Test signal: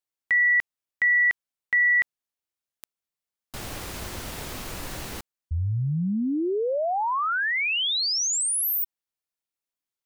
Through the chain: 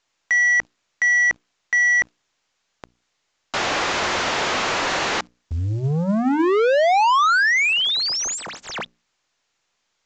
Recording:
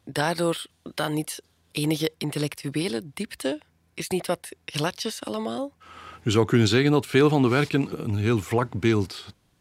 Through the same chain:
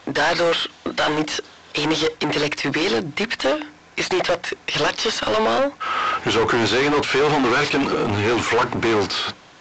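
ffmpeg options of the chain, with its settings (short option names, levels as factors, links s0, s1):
-filter_complex "[0:a]asplit=2[s0][s1];[s1]highpass=f=720:p=1,volume=70.8,asoftclip=type=tanh:threshold=0.473[s2];[s0][s2]amix=inputs=2:normalize=0,lowpass=f=1800:p=1,volume=0.501,lowshelf=f=370:g=-6,bandreject=f=60:t=h:w=6,bandreject=f=120:t=h:w=6,bandreject=f=180:t=h:w=6,bandreject=f=240:t=h:w=6,bandreject=f=300:t=h:w=6,acrusher=bits=9:dc=4:mix=0:aa=0.000001,volume=0.841" -ar 16000 -c:a pcm_mulaw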